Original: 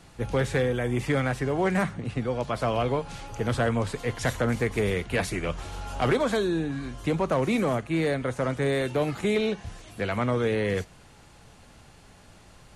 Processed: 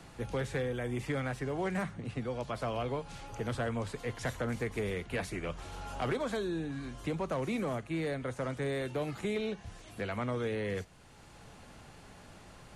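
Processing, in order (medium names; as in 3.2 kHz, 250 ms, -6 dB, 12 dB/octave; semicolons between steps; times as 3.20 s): three bands compressed up and down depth 40%; trim -9 dB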